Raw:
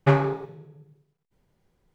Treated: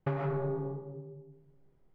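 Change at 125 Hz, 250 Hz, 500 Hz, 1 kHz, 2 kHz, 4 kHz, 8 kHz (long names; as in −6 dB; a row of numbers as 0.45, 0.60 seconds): −9.0 dB, −9.0 dB, −7.5 dB, −11.5 dB, −14.5 dB, below −15 dB, can't be measured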